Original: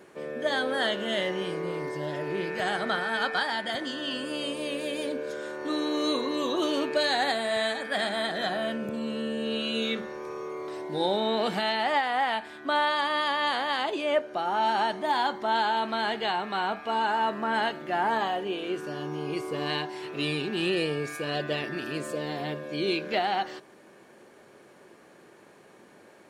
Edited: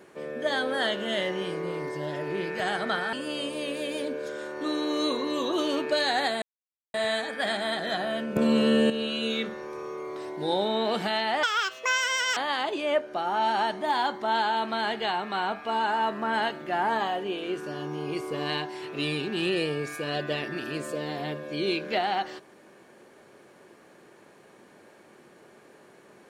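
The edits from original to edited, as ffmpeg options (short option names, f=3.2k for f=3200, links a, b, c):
-filter_complex "[0:a]asplit=7[a][b][c][d][e][f][g];[a]atrim=end=3.132[h];[b]atrim=start=4.168:end=7.46,asetpts=PTS-STARTPTS,afade=t=out:st=3.288:d=0.004:c=hsin,apad=pad_dur=0.52[i];[c]atrim=start=7.46:end=8.882,asetpts=PTS-STARTPTS,afade=t=in:d=0.004:c=hsin[j];[d]atrim=start=8.878:end=9.422,asetpts=PTS-STARTPTS,volume=10dB[k];[e]atrim=start=9.418:end=11.954[l];[f]atrim=start=11.95:end=13.57,asetpts=PTS-STARTPTS,asetrate=76293,aresample=44100[m];[g]atrim=start=13.566[n];[i][j]concat=n=2:v=0:a=1[o];[h][o]acrossfade=d=0.004:c1=hsin:c2=hsin[p];[p][k]acrossfade=d=0.004:c1=hsin:c2=hsin[q];[q][l]acrossfade=d=0.004:c1=hsin:c2=hsin[r];[r][m]acrossfade=d=0.004:c1=hsin:c2=hsin[s];[s][n]acrossfade=d=0.004:c1=hsin:c2=hsin"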